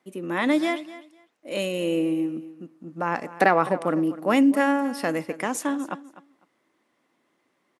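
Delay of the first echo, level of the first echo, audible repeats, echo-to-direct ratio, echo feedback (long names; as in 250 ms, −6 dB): 251 ms, −16.5 dB, 2, −16.5 dB, 18%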